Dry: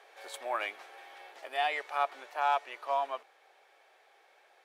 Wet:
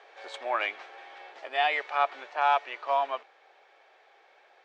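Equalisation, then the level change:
Bessel low-pass filter 4,500 Hz, order 8
dynamic equaliser 2,600 Hz, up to +3 dB, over −47 dBFS, Q 0.82
+4.0 dB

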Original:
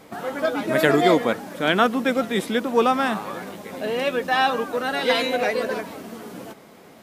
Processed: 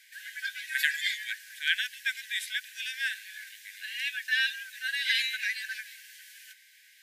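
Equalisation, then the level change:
linear-phase brick-wall high-pass 1,500 Hz
−2.0 dB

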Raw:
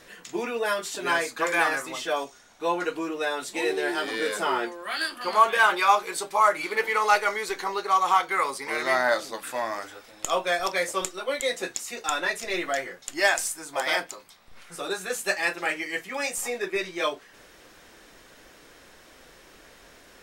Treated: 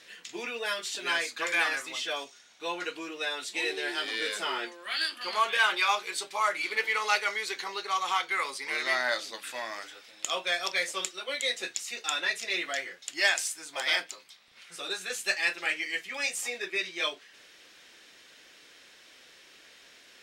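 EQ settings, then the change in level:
meter weighting curve D
−9.0 dB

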